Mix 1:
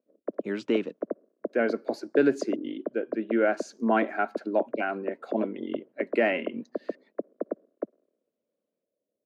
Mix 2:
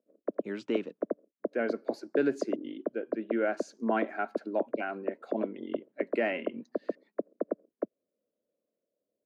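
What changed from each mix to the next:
speech −5.5 dB
reverb: off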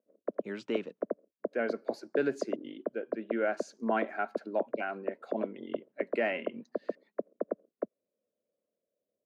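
master: add parametric band 300 Hz −5 dB 0.71 octaves

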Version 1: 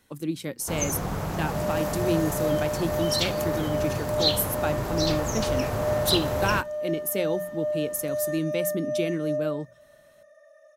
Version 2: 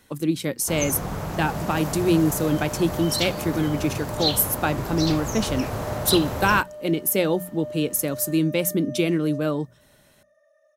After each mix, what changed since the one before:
speech +6.5 dB
second sound −8.0 dB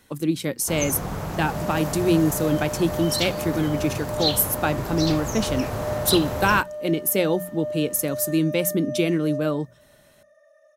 second sound +5.5 dB

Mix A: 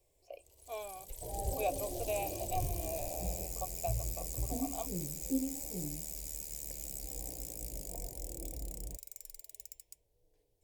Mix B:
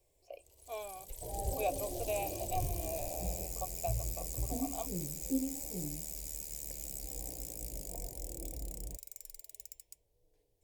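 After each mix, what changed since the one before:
nothing changed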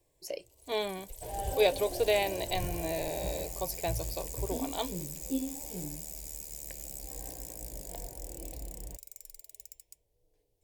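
speech: remove formant filter a
second sound: remove moving average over 32 samples

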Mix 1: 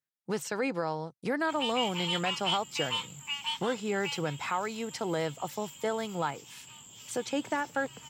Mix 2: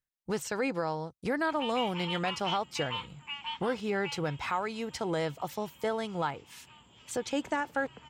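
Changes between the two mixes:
background: add band-pass filter 160–2,400 Hz
master: remove high-pass filter 120 Hz 24 dB per octave

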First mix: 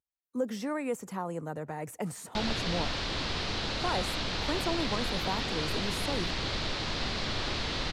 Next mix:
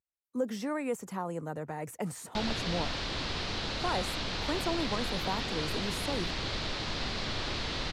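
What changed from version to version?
reverb: off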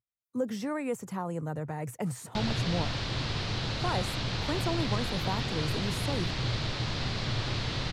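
master: add parametric band 120 Hz +14 dB 0.66 octaves

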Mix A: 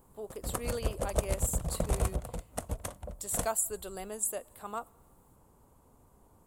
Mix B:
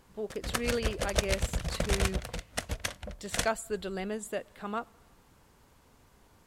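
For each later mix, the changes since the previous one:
speech: add spectral tilt −4.5 dB per octave
master: add flat-topped bell 3,000 Hz +14 dB 2.3 octaves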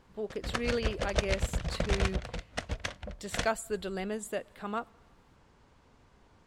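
background: add high-frequency loss of the air 92 metres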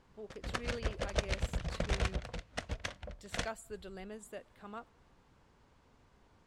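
speech −11.5 dB
background −4.0 dB

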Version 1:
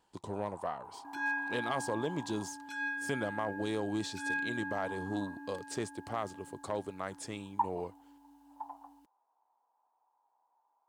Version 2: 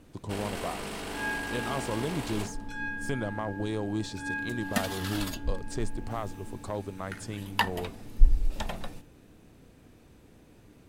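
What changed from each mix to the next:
second sound: remove flat-topped band-pass 900 Hz, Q 4.4
master: remove high-pass filter 270 Hz 6 dB per octave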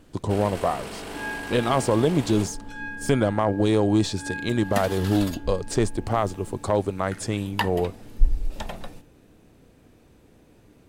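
speech +10.5 dB
master: add parametric band 510 Hz +2.5 dB 1.4 octaves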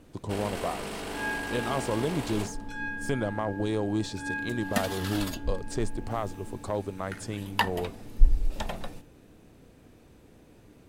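speech −8.5 dB

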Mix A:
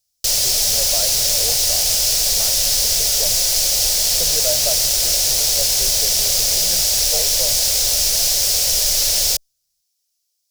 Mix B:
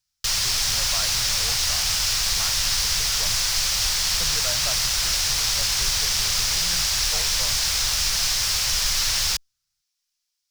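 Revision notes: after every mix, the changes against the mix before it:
master: add drawn EQ curve 160 Hz 0 dB, 590 Hz −14 dB, 1,100 Hz +9 dB, 12,000 Hz −12 dB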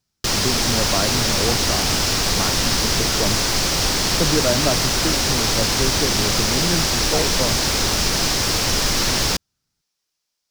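master: remove guitar amp tone stack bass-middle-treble 10-0-10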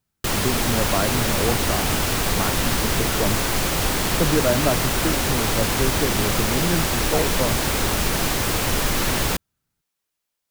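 background: add parametric band 5,300 Hz −13 dB 0.94 octaves
master: add high-shelf EQ 6,100 Hz +4.5 dB

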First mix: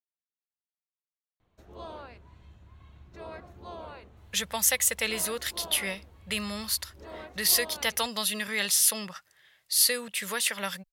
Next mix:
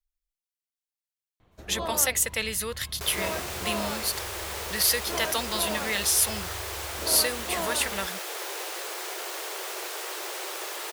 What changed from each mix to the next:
speech: entry −2.65 s
first sound +9.0 dB
second sound: unmuted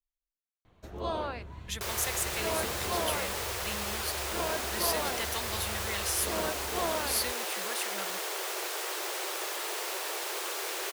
speech −9.0 dB
first sound: entry −0.75 s
second sound: entry −1.20 s

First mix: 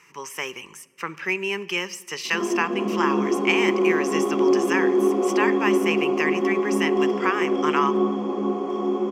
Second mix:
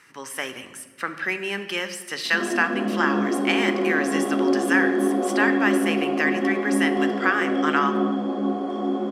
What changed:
speech: send +10.5 dB
master: remove EQ curve with evenly spaced ripples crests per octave 0.76, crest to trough 11 dB

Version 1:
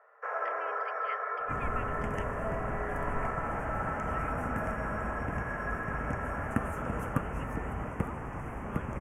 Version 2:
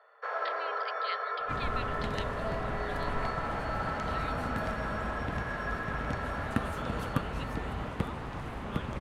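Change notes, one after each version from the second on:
master: remove Butterworth band-reject 4,000 Hz, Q 0.95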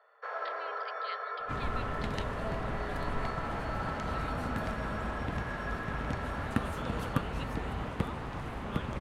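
speech −5.5 dB
first sound −3.5 dB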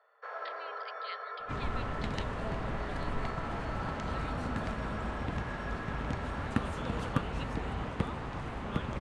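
first sound −3.5 dB
second sound: add low-pass filter 9,200 Hz 24 dB per octave

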